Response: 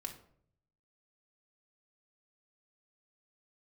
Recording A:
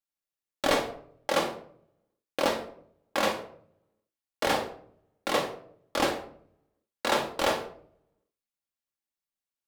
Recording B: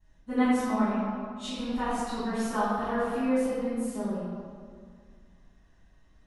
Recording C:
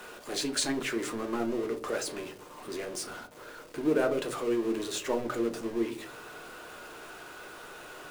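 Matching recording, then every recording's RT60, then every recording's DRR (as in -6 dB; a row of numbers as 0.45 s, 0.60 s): A; 0.60 s, 2.0 s, 0.50 s; 2.5 dB, -17.5 dB, 4.5 dB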